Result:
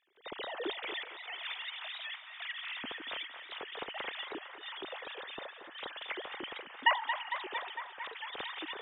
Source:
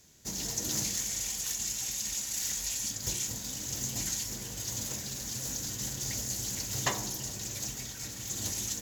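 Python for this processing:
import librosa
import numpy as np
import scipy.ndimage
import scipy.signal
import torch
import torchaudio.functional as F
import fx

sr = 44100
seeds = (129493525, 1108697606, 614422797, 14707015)

p1 = fx.sine_speech(x, sr)
p2 = fx.step_gate(p1, sr, bpm=188, pattern='..xxxxxxxxxxx.', floor_db=-12.0, edge_ms=4.5)
p3 = p2 + fx.echo_banded(p2, sr, ms=227, feedback_pct=84, hz=1300.0, wet_db=-7.5, dry=0)
p4 = fx.record_warp(p3, sr, rpm=78.0, depth_cents=100.0)
y = p4 * librosa.db_to_amplitude(-5.0)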